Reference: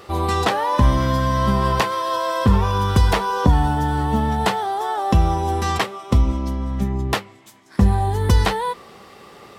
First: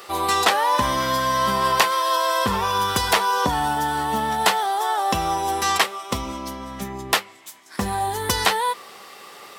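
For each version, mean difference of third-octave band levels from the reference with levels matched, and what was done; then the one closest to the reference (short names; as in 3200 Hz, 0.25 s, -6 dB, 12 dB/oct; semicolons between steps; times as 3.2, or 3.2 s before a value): 6.5 dB: HPF 950 Hz 6 dB/oct; high shelf 8200 Hz +7.5 dB; gain +4.5 dB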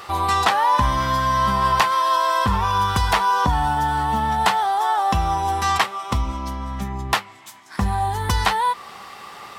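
4.5 dB: in parallel at 0 dB: compressor, threshold -28 dBFS, peak gain reduction 17.5 dB; on the sum: resonant low shelf 650 Hz -8.5 dB, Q 1.5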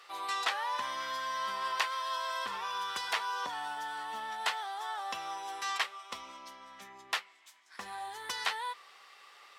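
10.0 dB: HPF 1400 Hz 12 dB/oct; high shelf 8800 Hz -10 dB; gain -6 dB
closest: second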